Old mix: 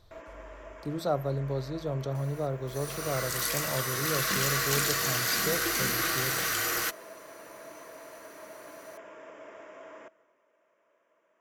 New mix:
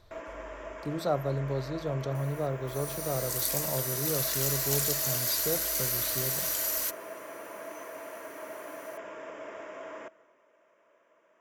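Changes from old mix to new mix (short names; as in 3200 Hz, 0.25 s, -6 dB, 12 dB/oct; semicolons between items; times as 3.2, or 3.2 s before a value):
first sound +5.0 dB; second sound: add differentiator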